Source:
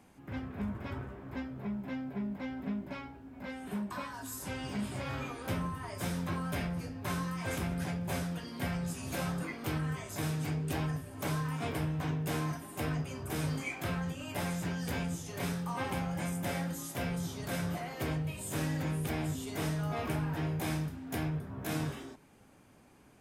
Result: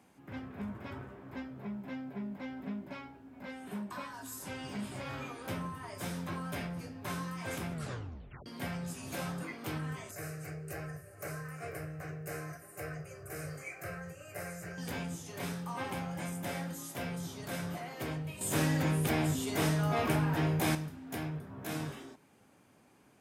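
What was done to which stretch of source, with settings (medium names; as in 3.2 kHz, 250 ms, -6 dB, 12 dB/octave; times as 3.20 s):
7.72 s: tape stop 0.74 s
10.11–14.78 s: static phaser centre 930 Hz, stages 6
18.41–20.75 s: gain +7.5 dB
whole clip: high-pass 85 Hz; bass shelf 180 Hz -3 dB; trim -2 dB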